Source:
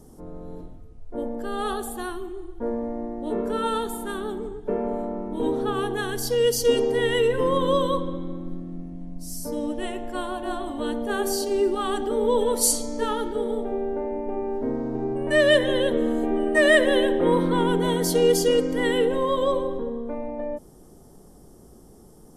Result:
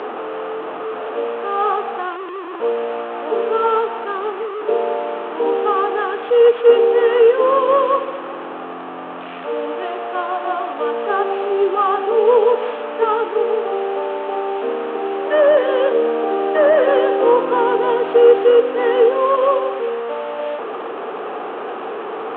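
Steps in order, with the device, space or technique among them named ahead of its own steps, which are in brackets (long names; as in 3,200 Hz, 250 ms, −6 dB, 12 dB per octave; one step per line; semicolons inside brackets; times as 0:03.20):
digital answering machine (band-pass filter 330–3,100 Hz; linear delta modulator 16 kbit/s, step −28.5 dBFS; loudspeaker in its box 360–4,100 Hz, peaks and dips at 450 Hz +8 dB, 770 Hz +7 dB, 1,200 Hz +8 dB, 2,100 Hz −7 dB)
level +5 dB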